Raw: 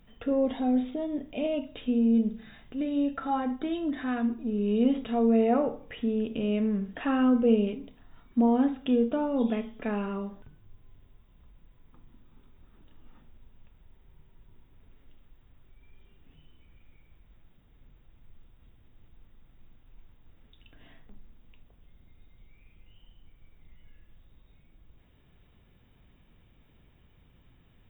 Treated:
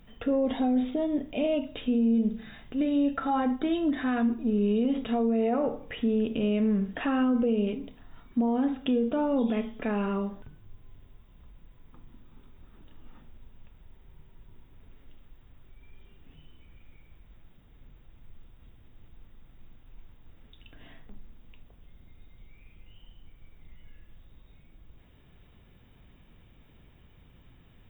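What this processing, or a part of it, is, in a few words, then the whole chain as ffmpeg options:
stacked limiters: -af "alimiter=limit=0.15:level=0:latency=1:release=342,alimiter=limit=0.075:level=0:latency=1:release=59,volume=1.58"

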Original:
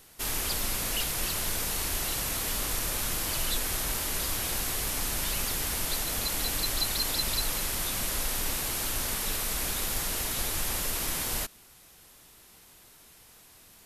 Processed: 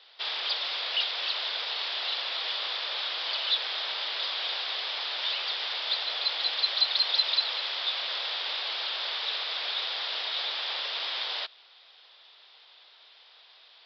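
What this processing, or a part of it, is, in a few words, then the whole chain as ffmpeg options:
musical greeting card: -af "aresample=11025,aresample=44100,highpass=f=540:w=0.5412,highpass=f=540:w=1.3066,equalizer=f=3500:t=o:w=0.53:g=11.5"

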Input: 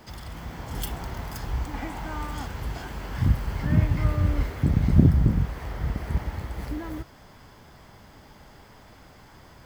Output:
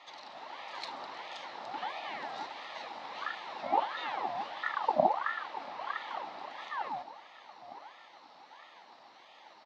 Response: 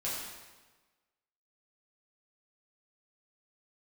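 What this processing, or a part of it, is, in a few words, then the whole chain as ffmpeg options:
voice changer toy: -filter_complex "[0:a]highpass=f=180:w=0.5412,highpass=f=180:w=1.3066,highshelf=f=11000:g=-5,asplit=2[s0][s1];[s1]adelay=907,lowpass=f=2000:p=1,volume=0.2,asplit=2[s2][s3];[s3]adelay=907,lowpass=f=2000:p=1,volume=0.46,asplit=2[s4][s5];[s5]adelay=907,lowpass=f=2000:p=1,volume=0.46,asplit=2[s6][s7];[s7]adelay=907,lowpass=f=2000:p=1,volume=0.46[s8];[s0][s2][s4][s6][s8]amix=inputs=5:normalize=0,aeval=exprs='val(0)*sin(2*PI*1000*n/s+1000*0.6/1.5*sin(2*PI*1.5*n/s))':c=same,highpass=420,equalizer=f=430:t=q:w=4:g=-8,equalizer=f=850:t=q:w=4:g=8,equalizer=f=1500:t=q:w=4:g=-9,equalizer=f=2500:t=q:w=4:g=-5,equalizer=f=4000:t=q:w=4:g=5,lowpass=f=4900:w=0.5412,lowpass=f=4900:w=1.3066"

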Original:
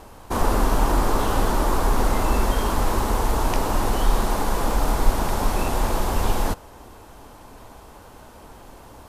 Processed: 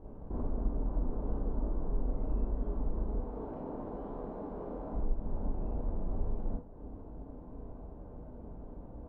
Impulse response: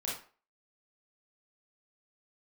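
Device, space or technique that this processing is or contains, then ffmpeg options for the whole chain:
television next door: -filter_complex "[0:a]asettb=1/sr,asplit=3[s0][s1][s2];[s0]atrim=end=3.204[s3];[s1]atrim=start=3.2:end=4.93,asetpts=PTS-STARTPTS,afade=t=in:d=0.004:c=qsin,afade=t=out:st=1.726:d=0.004:c=qsin,highpass=f=340:p=1[s4];[s2]atrim=start=4.926[s5];[s3][s4]acrossfade=d=0.004:c1=hsin:c2=qsin[s6];[s6][s5]acrossfade=d=0.004:c1=qsin:c2=hsin,acompressor=threshold=0.02:ratio=3,lowpass=380[s7];[1:a]atrim=start_sample=2205[s8];[s7][s8]afir=irnorm=-1:irlink=0,volume=0.841"

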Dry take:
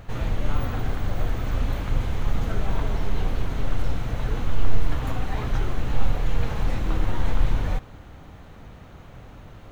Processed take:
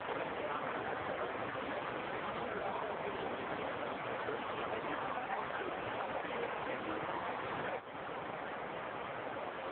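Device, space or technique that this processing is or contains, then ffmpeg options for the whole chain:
voicemail: -af "highpass=420,lowpass=3000,acompressor=threshold=0.00398:ratio=8,volume=5.96" -ar 8000 -c:a libopencore_amrnb -b:a 4750

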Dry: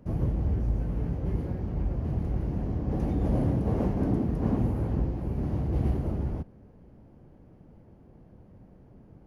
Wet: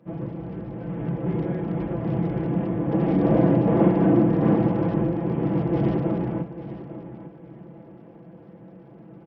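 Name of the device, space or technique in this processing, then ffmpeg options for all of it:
Bluetooth headset: -filter_complex "[0:a]bandreject=f=50:t=h:w=6,bandreject=f=100:t=h:w=6,bandreject=f=150:t=h:w=6,bandreject=f=200:t=h:w=6,bandreject=f=250:t=h:w=6,aecho=1:1:6:0.8,asplit=3[s0][s1][s2];[s0]afade=t=out:st=3.08:d=0.02[s3];[s1]asplit=2[s4][s5];[s5]adelay=49,volume=0.631[s6];[s4][s6]amix=inputs=2:normalize=0,afade=t=in:st=3.08:d=0.02,afade=t=out:st=4.52:d=0.02[s7];[s2]afade=t=in:st=4.52:d=0.02[s8];[s3][s7][s8]amix=inputs=3:normalize=0,highpass=170,aecho=1:1:851|1702|2553:0.211|0.0571|0.0154,dynaudnorm=f=160:g=13:m=2.66,aresample=8000,aresample=44100" -ar 44100 -c:a sbc -b:a 64k

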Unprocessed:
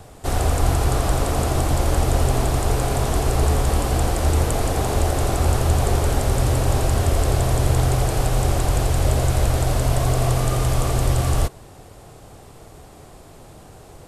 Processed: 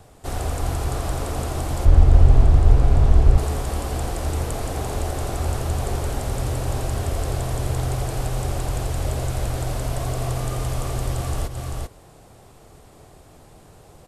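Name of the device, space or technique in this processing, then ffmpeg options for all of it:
ducked delay: -filter_complex "[0:a]asplit=3[s0][s1][s2];[s1]adelay=391,volume=0.631[s3];[s2]apad=whole_len=638158[s4];[s3][s4]sidechaincompress=threshold=0.0447:ratio=8:attack=26:release=141[s5];[s0][s5]amix=inputs=2:normalize=0,asettb=1/sr,asplit=3[s6][s7][s8];[s6]atrim=end=1.854[s9];[s7]atrim=start=1.85:end=3.38,asetpts=PTS-STARTPTS,afade=t=in:d=0.004:c=qsin,afade=t=out:st=1.526:d=0.004:c=qsin,aemphasis=mode=reproduction:type=bsi[s10];[s8]atrim=start=3.376[s11];[s9][s10]acrossfade=d=0.004:c1=hsin:c2=qsin[s12];[s12][s11]acrossfade=d=0.004:c1=qsin:c2=hsin,volume=0.501"

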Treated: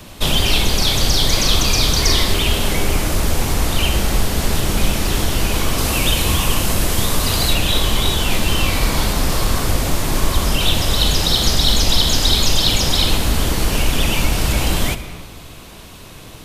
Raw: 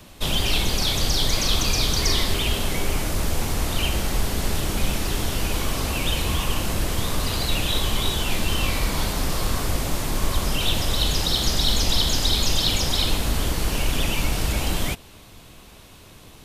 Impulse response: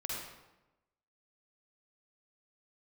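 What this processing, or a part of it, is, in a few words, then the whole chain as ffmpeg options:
compressed reverb return: -filter_complex "[0:a]asplit=2[s0][s1];[1:a]atrim=start_sample=2205[s2];[s1][s2]afir=irnorm=-1:irlink=0,acompressor=threshold=0.0631:ratio=6,volume=0.668[s3];[s0][s3]amix=inputs=2:normalize=0,asettb=1/sr,asplit=3[s4][s5][s6];[s4]atrim=end=5.784[s7];[s5]atrim=start=5.78:end=7.53,asetpts=PTS-STARTPTS,afade=t=in:d=0.004:c=qsin,afade=t=out:st=1.746:d=0.004:c=qsin,equalizer=f=12000:t=o:w=1.7:g=4.5[s8];[s6]atrim=start=7.526[s9];[s7][s8]acrossfade=d=0.004:c1=hsin:c2=qsin[s10];[s10][s9]acrossfade=d=0.004:c1=qsin:c2=hsin,volume=1.68"

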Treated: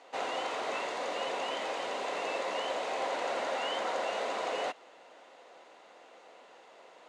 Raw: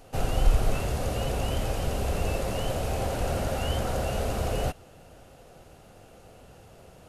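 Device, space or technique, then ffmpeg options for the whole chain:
phone speaker on a table: -af "highpass=f=330:w=0.5412,highpass=f=330:w=1.3066,equalizer=f=390:t=q:w=4:g=-4,equalizer=f=1000:t=q:w=4:g=9,equalizer=f=2000:t=q:w=4:g=9,equalizer=f=3700:t=q:w=4:g=5,equalizer=f=5400:t=q:w=4:g=-4,lowpass=f=6900:w=0.5412,lowpass=f=6900:w=1.3066,volume=0.75"

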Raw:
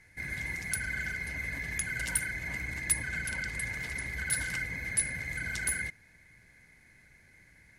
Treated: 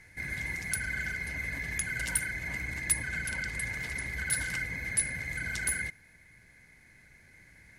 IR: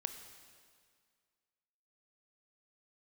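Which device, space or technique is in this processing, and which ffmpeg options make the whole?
ducked reverb: -filter_complex "[0:a]asplit=3[s0][s1][s2];[1:a]atrim=start_sample=2205[s3];[s1][s3]afir=irnorm=-1:irlink=0[s4];[s2]apad=whole_len=343159[s5];[s4][s5]sidechaincompress=threshold=0.00158:ratio=3:attack=16:release=1310,volume=0.841[s6];[s0][s6]amix=inputs=2:normalize=0"

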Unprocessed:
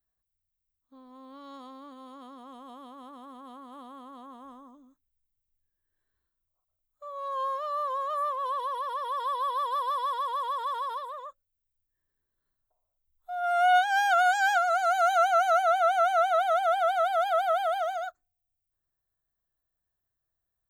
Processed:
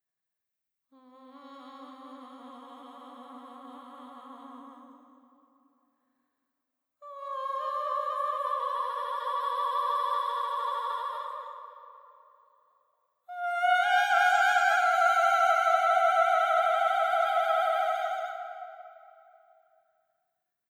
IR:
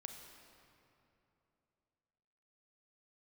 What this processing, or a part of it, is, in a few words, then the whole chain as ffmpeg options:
stadium PA: -filter_complex "[0:a]highpass=f=130:w=0.5412,highpass=f=130:w=1.3066,equalizer=f=2100:t=o:w=0.76:g=7.5,aecho=1:1:172|227.4:0.282|0.891[s0];[1:a]atrim=start_sample=2205[s1];[s0][s1]afir=irnorm=-1:irlink=0"

